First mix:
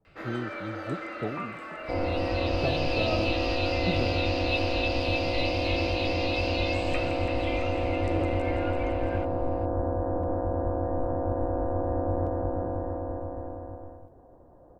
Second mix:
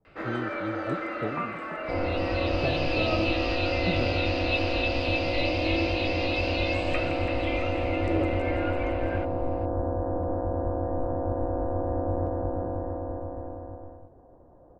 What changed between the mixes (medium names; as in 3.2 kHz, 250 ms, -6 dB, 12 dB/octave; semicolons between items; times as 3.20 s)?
first sound +5.5 dB; master: add treble shelf 3.8 kHz -11.5 dB